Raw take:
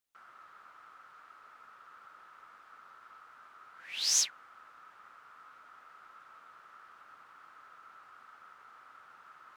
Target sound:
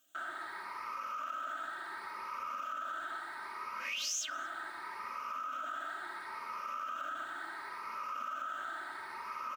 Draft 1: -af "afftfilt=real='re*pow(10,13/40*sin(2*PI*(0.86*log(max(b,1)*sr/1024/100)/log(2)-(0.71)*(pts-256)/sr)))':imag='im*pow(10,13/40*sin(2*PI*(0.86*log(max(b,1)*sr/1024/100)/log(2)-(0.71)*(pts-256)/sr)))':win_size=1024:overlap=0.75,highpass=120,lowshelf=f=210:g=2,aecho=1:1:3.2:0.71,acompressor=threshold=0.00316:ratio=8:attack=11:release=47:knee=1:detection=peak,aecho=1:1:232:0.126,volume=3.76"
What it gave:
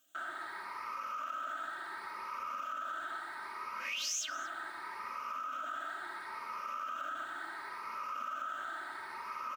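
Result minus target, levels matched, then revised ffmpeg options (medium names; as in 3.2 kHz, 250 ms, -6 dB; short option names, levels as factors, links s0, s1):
echo-to-direct +8 dB
-af "afftfilt=real='re*pow(10,13/40*sin(2*PI*(0.86*log(max(b,1)*sr/1024/100)/log(2)-(0.71)*(pts-256)/sr)))':imag='im*pow(10,13/40*sin(2*PI*(0.86*log(max(b,1)*sr/1024/100)/log(2)-(0.71)*(pts-256)/sr)))':win_size=1024:overlap=0.75,highpass=120,lowshelf=f=210:g=2,aecho=1:1:3.2:0.71,acompressor=threshold=0.00316:ratio=8:attack=11:release=47:knee=1:detection=peak,aecho=1:1:232:0.0501,volume=3.76"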